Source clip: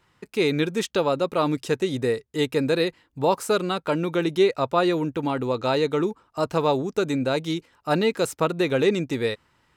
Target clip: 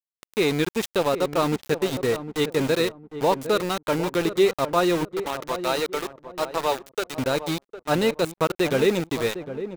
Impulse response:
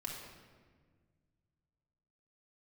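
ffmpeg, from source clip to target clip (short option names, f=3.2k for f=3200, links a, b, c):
-filter_complex "[0:a]asplit=3[a][b][c];[a]afade=t=out:st=5.04:d=0.02[d];[b]highpass=480,afade=t=in:st=5.04:d=0.02,afade=t=out:st=7.17:d=0.02[e];[c]afade=t=in:st=7.17:d=0.02[f];[d][e][f]amix=inputs=3:normalize=0,aeval=exprs='val(0)*gte(abs(val(0)),0.0501)':c=same,asplit=2[g][h];[h]adelay=756,lowpass=f=840:p=1,volume=-10dB,asplit=2[i][j];[j]adelay=756,lowpass=f=840:p=1,volume=0.31,asplit=2[k][l];[l]adelay=756,lowpass=f=840:p=1,volume=0.31[m];[g][i][k][m]amix=inputs=4:normalize=0"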